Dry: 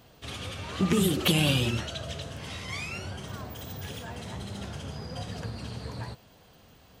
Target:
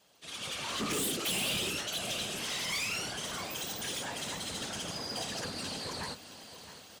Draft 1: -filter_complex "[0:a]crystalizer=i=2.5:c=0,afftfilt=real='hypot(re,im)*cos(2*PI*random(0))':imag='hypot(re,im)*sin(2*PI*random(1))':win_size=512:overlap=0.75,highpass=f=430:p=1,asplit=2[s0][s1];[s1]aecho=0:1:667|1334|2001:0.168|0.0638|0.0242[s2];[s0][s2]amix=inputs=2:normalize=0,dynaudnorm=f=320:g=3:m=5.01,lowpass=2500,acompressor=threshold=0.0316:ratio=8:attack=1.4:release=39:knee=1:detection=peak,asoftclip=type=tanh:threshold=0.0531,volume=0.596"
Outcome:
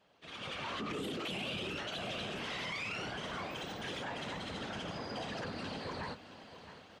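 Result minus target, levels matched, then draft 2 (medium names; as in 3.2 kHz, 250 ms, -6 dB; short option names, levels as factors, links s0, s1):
compression: peak gain reduction +14 dB; 8 kHz band -13.0 dB
-filter_complex "[0:a]crystalizer=i=2.5:c=0,afftfilt=real='hypot(re,im)*cos(2*PI*random(0))':imag='hypot(re,im)*sin(2*PI*random(1))':win_size=512:overlap=0.75,highpass=f=430:p=1,asplit=2[s0][s1];[s1]aecho=0:1:667|1334|2001:0.168|0.0638|0.0242[s2];[s0][s2]amix=inputs=2:normalize=0,dynaudnorm=f=320:g=3:m=5.01,lowpass=9500,asoftclip=type=tanh:threshold=0.0531,volume=0.596"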